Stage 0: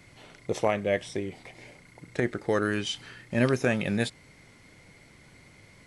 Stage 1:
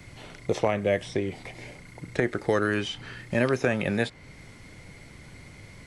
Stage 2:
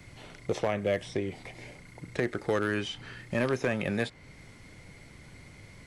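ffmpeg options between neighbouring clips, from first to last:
ffmpeg -i in.wav -filter_complex "[0:a]acrossover=split=330|2300|5900[link_01][link_02][link_03][link_04];[link_01]acompressor=threshold=-38dB:ratio=4[link_05];[link_02]acompressor=threshold=-27dB:ratio=4[link_06];[link_03]acompressor=threshold=-45dB:ratio=4[link_07];[link_04]acompressor=threshold=-59dB:ratio=4[link_08];[link_05][link_06][link_07][link_08]amix=inputs=4:normalize=0,lowshelf=frequency=120:gain=8,volume=5dB" out.wav
ffmpeg -i in.wav -af "asoftclip=type=hard:threshold=-16dB,volume=-3.5dB" out.wav

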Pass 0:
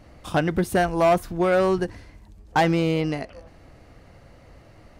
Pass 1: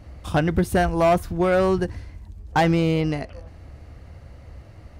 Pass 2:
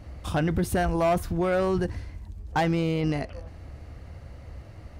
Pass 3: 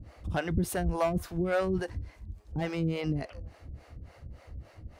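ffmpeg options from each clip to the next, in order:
ffmpeg -i in.wav -af "equalizer=frequency=72:width_type=o:width=1.4:gain=12.5" out.wav
ffmpeg -i in.wav -af "alimiter=limit=-17dB:level=0:latency=1:release=11" out.wav
ffmpeg -i in.wav -filter_complex "[0:a]acrossover=split=400[link_01][link_02];[link_01]aeval=exprs='val(0)*(1-1/2+1/2*cos(2*PI*3.5*n/s))':channel_layout=same[link_03];[link_02]aeval=exprs='val(0)*(1-1/2-1/2*cos(2*PI*3.5*n/s))':channel_layout=same[link_04];[link_03][link_04]amix=inputs=2:normalize=0" out.wav

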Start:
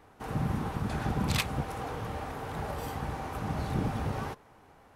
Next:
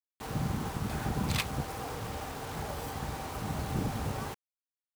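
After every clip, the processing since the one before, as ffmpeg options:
ffmpeg -i in.wav -af "acrusher=bits=6:mix=0:aa=0.000001,volume=-2dB" out.wav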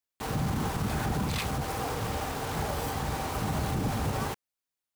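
ffmpeg -i in.wav -af "alimiter=level_in=3.5dB:limit=-24dB:level=0:latency=1:release=24,volume=-3.5dB,volume=6dB" out.wav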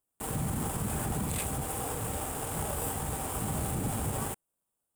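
ffmpeg -i in.wav -filter_complex "[0:a]highshelf=frequency=6700:width_type=q:width=3:gain=9.5,asplit=2[link_01][link_02];[link_02]acrusher=samples=21:mix=1:aa=0.000001,volume=-7.5dB[link_03];[link_01][link_03]amix=inputs=2:normalize=0,volume=-6dB" out.wav

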